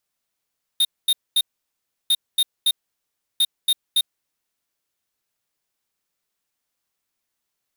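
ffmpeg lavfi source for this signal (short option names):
-f lavfi -i "aevalsrc='0.141*(2*lt(mod(3690*t,1),0.5)-1)*clip(min(mod(mod(t,1.3),0.28),0.05-mod(mod(t,1.3),0.28))/0.005,0,1)*lt(mod(t,1.3),0.84)':d=3.9:s=44100"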